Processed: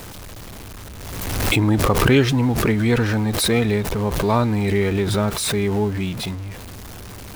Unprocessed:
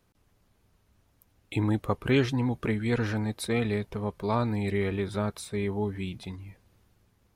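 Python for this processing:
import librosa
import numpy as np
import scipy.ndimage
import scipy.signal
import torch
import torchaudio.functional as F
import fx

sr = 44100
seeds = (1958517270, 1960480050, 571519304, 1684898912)

y = x + 0.5 * 10.0 ** (-38.0 / 20.0) * np.sign(x)
y = fx.pre_swell(y, sr, db_per_s=33.0)
y = y * 10.0 ** (7.5 / 20.0)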